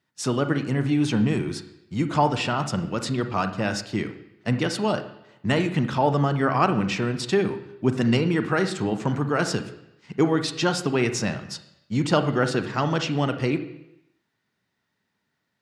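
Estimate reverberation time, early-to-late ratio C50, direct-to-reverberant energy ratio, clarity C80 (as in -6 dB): 0.85 s, 11.5 dB, 8.5 dB, 14.0 dB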